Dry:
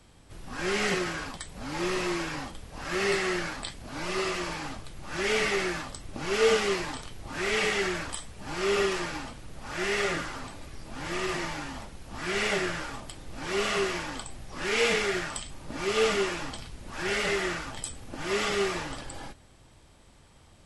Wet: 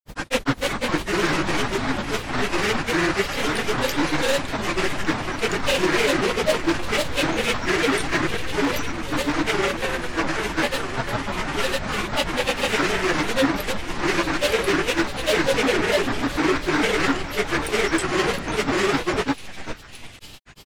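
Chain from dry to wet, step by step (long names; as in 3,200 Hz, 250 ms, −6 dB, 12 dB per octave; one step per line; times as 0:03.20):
gain into a clipping stage and back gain 26.5 dB
echo with a time of its own for lows and highs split 1,700 Hz, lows 151 ms, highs 690 ms, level −12 dB
spring reverb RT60 1.3 s, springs 47 ms, chirp 80 ms, DRR 1 dB
granular cloud, spray 671 ms, pitch spread up and down by 7 semitones
level +8.5 dB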